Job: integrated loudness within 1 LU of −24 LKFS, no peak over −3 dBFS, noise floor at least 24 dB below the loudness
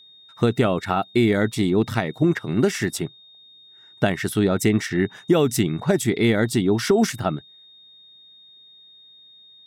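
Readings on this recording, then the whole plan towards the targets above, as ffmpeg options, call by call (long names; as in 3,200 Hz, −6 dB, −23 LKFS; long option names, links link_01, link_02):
interfering tone 3,700 Hz; level of the tone −47 dBFS; integrated loudness −21.5 LKFS; sample peak −7.0 dBFS; target loudness −24.0 LKFS
→ -af "bandreject=frequency=3700:width=30"
-af "volume=-2.5dB"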